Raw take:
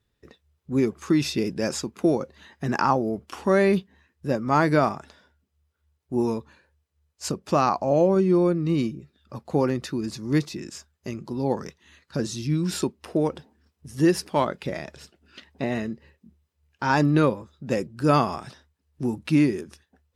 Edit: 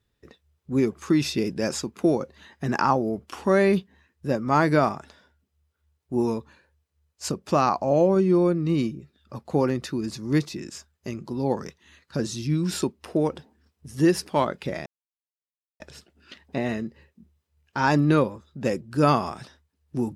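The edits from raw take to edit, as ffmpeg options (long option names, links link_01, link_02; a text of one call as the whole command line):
ffmpeg -i in.wav -filter_complex "[0:a]asplit=2[link_01][link_02];[link_01]atrim=end=14.86,asetpts=PTS-STARTPTS,afade=type=out:start_time=14.856:duration=0.004:curve=hsin,apad=pad_dur=0.94[link_03];[link_02]atrim=start=14.86,asetpts=PTS-STARTPTS,afade=type=in:duration=0.004:curve=hsin[link_04];[link_03][link_04]concat=n=2:v=0:a=1" out.wav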